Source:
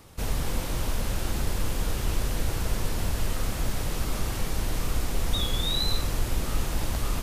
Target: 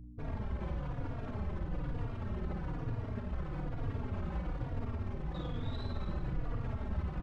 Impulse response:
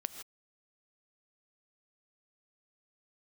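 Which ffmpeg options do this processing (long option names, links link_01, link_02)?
-filter_complex "[0:a]anlmdn=2.51,lowpass=1500,bandreject=frequency=235.9:width_type=h:width=4,bandreject=frequency=471.8:width_type=h:width=4,bandreject=frequency=707.7:width_type=h:width=4,bandreject=frequency=943.6:width_type=h:width=4,alimiter=level_in=0.5dB:limit=-24dB:level=0:latency=1:release=17,volume=-0.5dB,asoftclip=type=tanh:threshold=-28dB,afftfilt=real='hypot(re,im)*cos(2*PI*random(0))':imag='hypot(re,im)*sin(2*PI*random(1))':win_size=512:overlap=0.75,aeval=exprs='val(0)+0.00355*(sin(2*PI*60*n/s)+sin(2*PI*2*60*n/s)/2+sin(2*PI*3*60*n/s)/3+sin(2*PI*4*60*n/s)/4+sin(2*PI*5*60*n/s)/5)':channel_layout=same,asplit=2[link_01][link_02];[link_02]aecho=0:1:54|288:0.562|0.335[link_03];[link_01][link_03]amix=inputs=2:normalize=0,asplit=2[link_04][link_05];[link_05]adelay=3.6,afreqshift=-1.1[link_06];[link_04][link_06]amix=inputs=2:normalize=1,volume=4.5dB"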